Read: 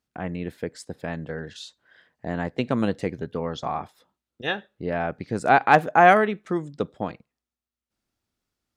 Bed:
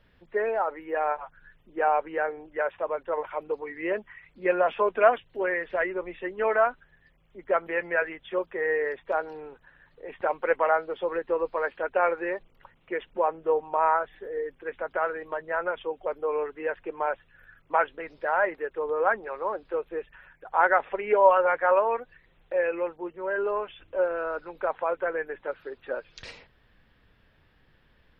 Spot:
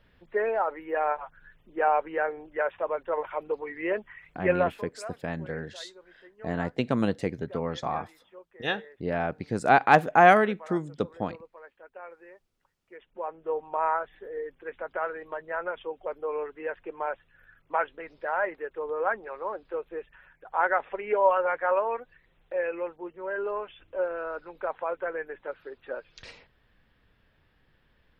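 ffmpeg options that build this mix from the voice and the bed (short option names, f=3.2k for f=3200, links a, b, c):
-filter_complex "[0:a]adelay=4200,volume=-2dB[a];[1:a]volume=17dB,afade=t=out:st=4.58:d=0.24:silence=0.0944061,afade=t=in:st=12.88:d=0.87:silence=0.141254[b];[a][b]amix=inputs=2:normalize=0"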